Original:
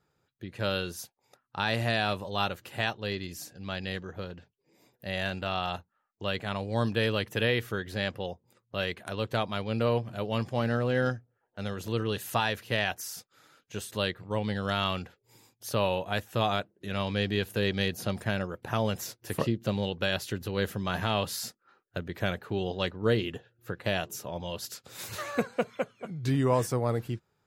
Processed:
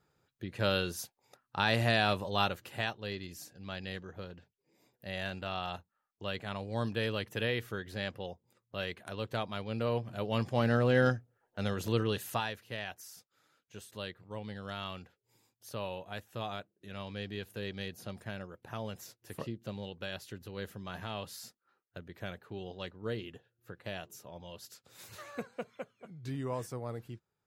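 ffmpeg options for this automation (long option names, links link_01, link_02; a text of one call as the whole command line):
ffmpeg -i in.wav -af "volume=7dB,afade=type=out:start_time=2.34:duration=0.6:silence=0.501187,afade=type=in:start_time=9.86:duration=1.01:silence=0.446684,afade=type=out:start_time=11.87:duration=0.71:silence=0.237137" out.wav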